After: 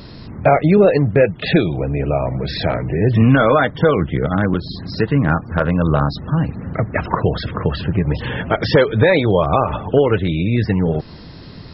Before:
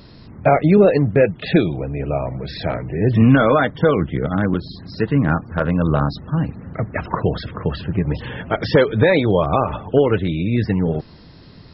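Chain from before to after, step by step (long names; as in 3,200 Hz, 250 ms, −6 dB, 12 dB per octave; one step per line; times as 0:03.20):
dynamic equaliser 250 Hz, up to −3 dB, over −25 dBFS, Q 1.2
in parallel at +1.5 dB: downward compressor, threshold −25 dBFS, peak gain reduction 14.5 dB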